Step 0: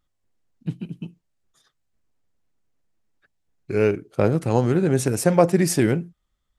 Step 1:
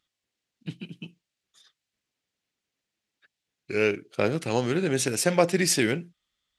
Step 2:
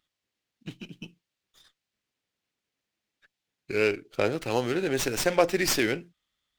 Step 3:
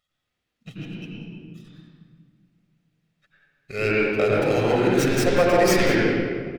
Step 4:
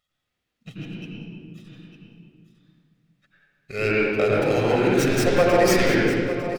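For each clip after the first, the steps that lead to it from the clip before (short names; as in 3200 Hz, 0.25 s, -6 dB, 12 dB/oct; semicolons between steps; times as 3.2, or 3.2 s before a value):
weighting filter D; gain -4.5 dB
dynamic EQ 170 Hz, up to -8 dB, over -42 dBFS, Q 1.6; running maximum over 3 samples
echo 0.191 s -15 dB; reverb RT60 1.8 s, pre-delay 83 ms, DRR -5 dB; gain -3 dB
echo 0.903 s -12 dB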